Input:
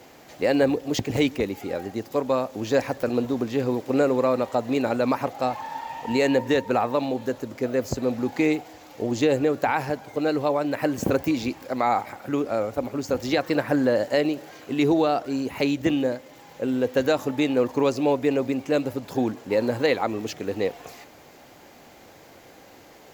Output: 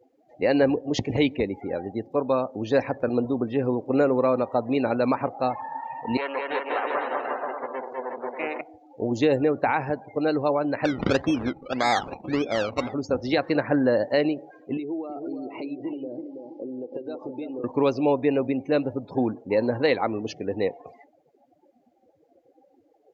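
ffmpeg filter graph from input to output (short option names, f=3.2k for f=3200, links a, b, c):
-filter_complex "[0:a]asettb=1/sr,asplit=3[a][b][c];[a]atrim=end=6.174[d];[b]atrim=start=6.17:end=8.61,asetpts=PTS-STARTPTS,afade=t=in:d=0.004:c=qsin,afade=t=out:st=2.436:d=0.004:c=qsin,aeval=exprs='max(val(0),0)':c=same,highpass=590,lowpass=2.8k,aecho=1:1:200|360|488|590.4|672.3|737.9|790.3:0.794|0.631|0.501|0.398|0.316|0.251|0.2,atrim=end_sample=107604[e];[c]atrim=start=8.606[f];[d][e]acrossfade=d=0.004:c1=hsin:c2=qsin[g];[g][f]acrossfade=d=0.004:c1=qsin:c2=hsin,asettb=1/sr,asplit=3[h][i][j];[h]atrim=end=10.854[k];[i]atrim=start=10.85:end=12.94,asetpts=PTS-STARTPTS,afade=t=in:d=0.004:c=qsin,afade=t=out:st=2.086:d=0.004:c=qsin,acrusher=samples=21:mix=1:aa=0.000001:lfo=1:lforange=12.6:lforate=1.7,aecho=1:1:968:0.119,atrim=end_sample=92169[l];[j]atrim=start=12.936[m];[k][l]acrossfade=d=0.004:c1=hsin:c2=qsin[n];[n][m]acrossfade=d=0.004:c1=qsin:c2=hsin,asettb=1/sr,asplit=3[o][p][q];[o]atrim=end=14.774[r];[p]atrim=start=14.77:end=17.64,asetpts=PTS-STARTPTS,afade=t=in:d=0.004:c=qsin,afade=t=out:st=2.866:d=0.004:c=qsin,acompressor=threshold=-32dB:ratio=8:attack=3.2:release=140:knee=1:detection=peak,highpass=190,equalizer=f=340:t=q:w=4:g=8,equalizer=f=1.7k:t=q:w=4:g=-7,equalizer=f=5k:t=q:w=4:g=6,lowpass=f=5.6k:w=0.5412,lowpass=f=5.6k:w=1.3066,asplit=2[s][t];[t]adelay=326,lowpass=f=1.5k:p=1,volume=-5dB,asplit=2[u][v];[v]adelay=326,lowpass=f=1.5k:p=1,volume=0.4,asplit=2[w][x];[x]adelay=326,lowpass=f=1.5k:p=1,volume=0.4,asplit=2[y][z];[z]adelay=326,lowpass=f=1.5k:p=1,volume=0.4,asplit=2[aa][ab];[ab]adelay=326,lowpass=f=1.5k:p=1,volume=0.4[ac];[s][u][w][y][aa][ac]amix=inputs=6:normalize=0,atrim=end_sample=126567[ad];[q]atrim=start=17.636[ae];[r][ad]acrossfade=d=0.004:c1=hsin:c2=qsin[af];[af][ae]acrossfade=d=0.004:c1=qsin:c2=hsin,acrossover=split=7500[ag][ah];[ah]acompressor=threshold=-59dB:ratio=4:attack=1:release=60[ai];[ag][ai]amix=inputs=2:normalize=0,afftdn=nr=32:nf=-38"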